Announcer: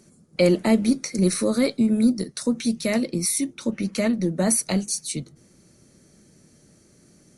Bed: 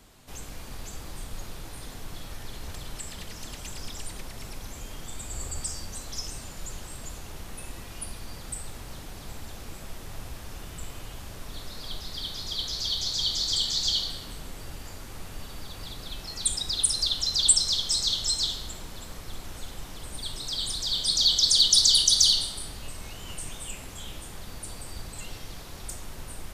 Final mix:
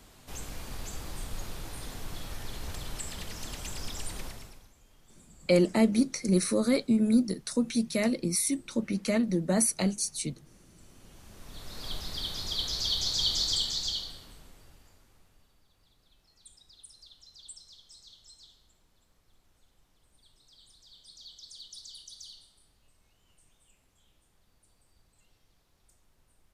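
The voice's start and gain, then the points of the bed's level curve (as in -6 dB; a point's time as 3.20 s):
5.10 s, -4.5 dB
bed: 4.27 s 0 dB
4.74 s -21.5 dB
10.74 s -21.5 dB
11.88 s -0.5 dB
13.41 s -0.5 dB
15.64 s -28 dB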